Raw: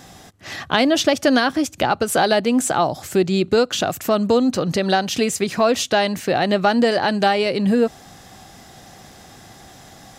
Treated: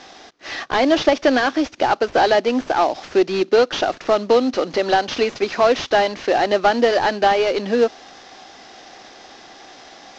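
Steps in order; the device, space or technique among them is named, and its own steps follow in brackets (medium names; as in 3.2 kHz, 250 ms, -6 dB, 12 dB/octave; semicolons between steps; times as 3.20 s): early wireless headset (high-pass 290 Hz 24 dB/octave; CVSD coder 32 kbps); trim +3 dB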